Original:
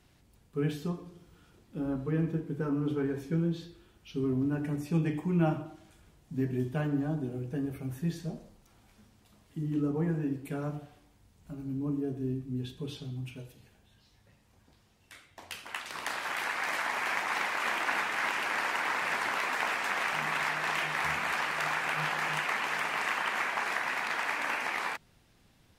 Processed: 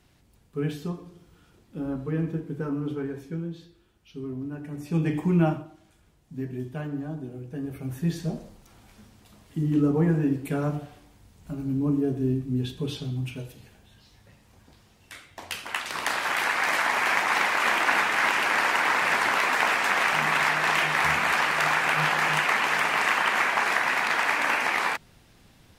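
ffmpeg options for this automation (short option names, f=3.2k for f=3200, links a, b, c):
-af "volume=24dB,afade=t=out:st=2.59:d=0.94:silence=0.473151,afade=t=in:st=4.7:d=0.58:silence=0.251189,afade=t=out:st=5.28:d=0.39:silence=0.334965,afade=t=in:st=7.5:d=0.86:silence=0.316228"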